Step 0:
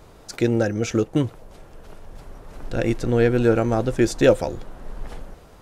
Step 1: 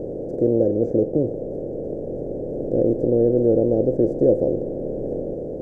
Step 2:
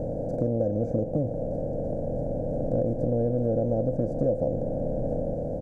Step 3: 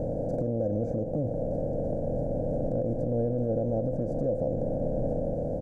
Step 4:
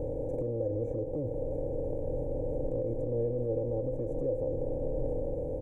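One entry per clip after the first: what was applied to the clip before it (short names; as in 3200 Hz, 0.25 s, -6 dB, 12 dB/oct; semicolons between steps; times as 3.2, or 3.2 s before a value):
per-bin compression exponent 0.4; inverse Chebyshev low-pass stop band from 1100 Hz, stop band 40 dB; tilt +2 dB/oct
comb 1.3 ms, depth 92%; compressor 3:1, threshold -23 dBFS, peak gain reduction 8.5 dB
limiter -19.5 dBFS, peak gain reduction 7.5 dB
fixed phaser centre 1000 Hz, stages 8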